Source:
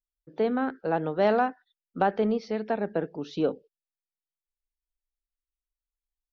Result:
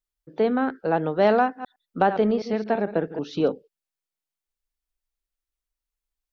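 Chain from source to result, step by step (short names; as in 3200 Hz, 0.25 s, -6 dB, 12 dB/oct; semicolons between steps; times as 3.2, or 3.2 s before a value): 1.43–3.48 reverse delay 0.11 s, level -10.5 dB; gain +4 dB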